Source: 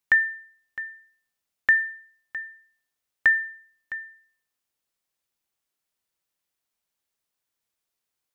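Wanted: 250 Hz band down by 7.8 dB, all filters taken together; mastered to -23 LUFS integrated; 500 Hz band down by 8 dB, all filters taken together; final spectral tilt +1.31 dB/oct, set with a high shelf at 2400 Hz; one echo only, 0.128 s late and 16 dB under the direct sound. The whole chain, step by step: bell 250 Hz -8 dB; bell 500 Hz -8 dB; high shelf 2400 Hz -8.5 dB; echo 0.128 s -16 dB; gain +5 dB

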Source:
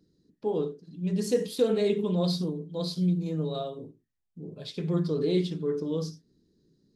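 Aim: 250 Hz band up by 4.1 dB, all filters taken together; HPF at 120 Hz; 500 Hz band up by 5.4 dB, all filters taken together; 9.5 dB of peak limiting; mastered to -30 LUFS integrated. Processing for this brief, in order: HPF 120 Hz; bell 250 Hz +6 dB; bell 500 Hz +4.5 dB; gain -3 dB; limiter -20 dBFS

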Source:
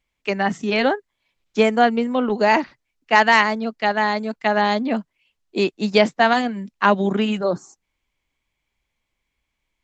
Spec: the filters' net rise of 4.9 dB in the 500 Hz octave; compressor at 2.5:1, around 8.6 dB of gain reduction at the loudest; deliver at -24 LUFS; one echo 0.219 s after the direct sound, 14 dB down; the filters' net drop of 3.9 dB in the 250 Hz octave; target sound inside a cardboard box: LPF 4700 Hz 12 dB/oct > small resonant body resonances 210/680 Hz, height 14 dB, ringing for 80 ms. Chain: bell 250 Hz -6.5 dB; bell 500 Hz +8 dB; compressor 2.5:1, threshold -20 dBFS; LPF 4700 Hz 12 dB/oct; echo 0.219 s -14 dB; small resonant body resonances 210/680 Hz, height 14 dB, ringing for 80 ms; gain -5.5 dB

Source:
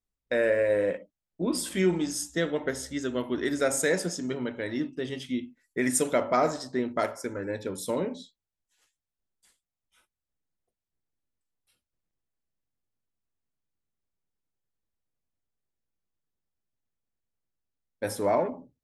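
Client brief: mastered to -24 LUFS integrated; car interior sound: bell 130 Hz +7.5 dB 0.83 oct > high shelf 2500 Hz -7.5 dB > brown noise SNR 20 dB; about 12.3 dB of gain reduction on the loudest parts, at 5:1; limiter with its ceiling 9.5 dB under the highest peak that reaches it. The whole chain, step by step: compressor 5:1, threshold -34 dBFS; limiter -28 dBFS; bell 130 Hz +7.5 dB 0.83 oct; high shelf 2500 Hz -7.5 dB; brown noise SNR 20 dB; gain +15.5 dB

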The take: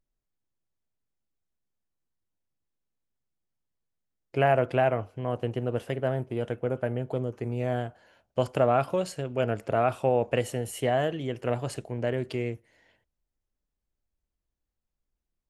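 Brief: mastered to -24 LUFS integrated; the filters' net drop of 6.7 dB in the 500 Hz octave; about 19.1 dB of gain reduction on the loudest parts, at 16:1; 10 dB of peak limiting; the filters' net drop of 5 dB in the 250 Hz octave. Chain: bell 250 Hz -4 dB; bell 500 Hz -8 dB; compressor 16:1, threshold -41 dBFS; gain +25 dB; limiter -11.5 dBFS

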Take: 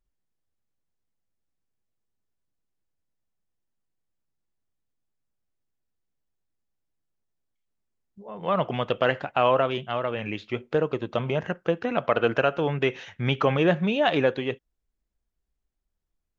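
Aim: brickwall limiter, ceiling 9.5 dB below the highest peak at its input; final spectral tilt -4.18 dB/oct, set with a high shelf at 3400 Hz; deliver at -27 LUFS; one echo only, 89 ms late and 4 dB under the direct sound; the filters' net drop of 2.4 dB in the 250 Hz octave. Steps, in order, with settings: bell 250 Hz -3.5 dB; high shelf 3400 Hz +4.5 dB; limiter -17 dBFS; echo 89 ms -4 dB; gain +1.5 dB

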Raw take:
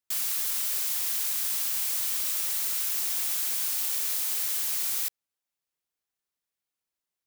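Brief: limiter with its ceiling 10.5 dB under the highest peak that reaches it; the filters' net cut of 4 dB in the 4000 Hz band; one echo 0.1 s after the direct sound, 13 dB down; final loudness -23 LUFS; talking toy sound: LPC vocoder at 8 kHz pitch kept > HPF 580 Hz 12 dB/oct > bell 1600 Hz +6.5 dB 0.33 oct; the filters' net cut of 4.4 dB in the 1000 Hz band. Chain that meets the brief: bell 1000 Hz -6.5 dB; bell 4000 Hz -5 dB; limiter -26 dBFS; echo 0.1 s -13 dB; LPC vocoder at 8 kHz pitch kept; HPF 580 Hz 12 dB/oct; bell 1600 Hz +6.5 dB 0.33 oct; gain +27.5 dB

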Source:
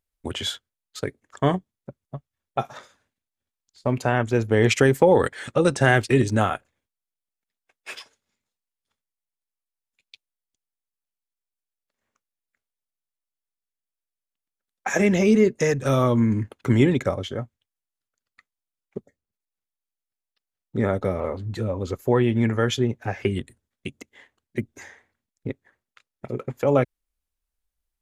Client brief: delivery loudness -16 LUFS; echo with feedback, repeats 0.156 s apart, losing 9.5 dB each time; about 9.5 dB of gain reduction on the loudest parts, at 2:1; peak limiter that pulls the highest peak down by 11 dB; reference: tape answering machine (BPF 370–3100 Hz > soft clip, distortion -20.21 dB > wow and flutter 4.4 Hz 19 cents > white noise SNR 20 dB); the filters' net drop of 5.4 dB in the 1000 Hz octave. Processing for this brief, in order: bell 1000 Hz -7.5 dB; compressor 2:1, threshold -31 dBFS; limiter -24.5 dBFS; BPF 370–3100 Hz; feedback echo 0.156 s, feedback 33%, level -9.5 dB; soft clip -29 dBFS; wow and flutter 4.4 Hz 19 cents; white noise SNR 20 dB; gain +26 dB

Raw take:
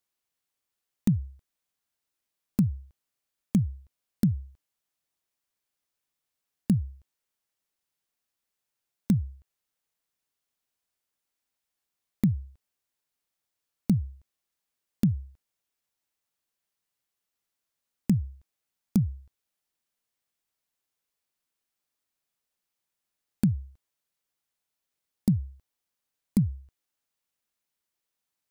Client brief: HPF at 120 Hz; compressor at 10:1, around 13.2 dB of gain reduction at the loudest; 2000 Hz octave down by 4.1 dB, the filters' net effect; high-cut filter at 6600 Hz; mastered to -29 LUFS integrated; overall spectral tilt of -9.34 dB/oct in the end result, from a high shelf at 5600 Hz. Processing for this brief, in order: HPF 120 Hz; LPF 6600 Hz; bell 2000 Hz -4 dB; high shelf 5600 Hz -8 dB; compressor 10:1, threshold -32 dBFS; gain +12.5 dB

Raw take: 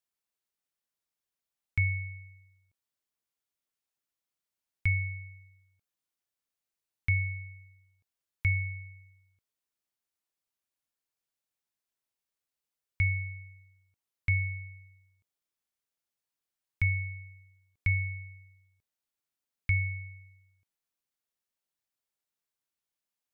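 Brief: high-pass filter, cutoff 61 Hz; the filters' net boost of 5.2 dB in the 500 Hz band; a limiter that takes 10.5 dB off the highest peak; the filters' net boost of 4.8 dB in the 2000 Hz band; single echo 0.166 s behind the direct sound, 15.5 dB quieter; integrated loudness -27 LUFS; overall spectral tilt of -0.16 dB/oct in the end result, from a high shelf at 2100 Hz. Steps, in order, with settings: HPF 61 Hz; bell 500 Hz +8 dB; bell 2000 Hz +7 dB; high shelf 2100 Hz -3.5 dB; limiter -25.5 dBFS; echo 0.166 s -15.5 dB; gain +8 dB

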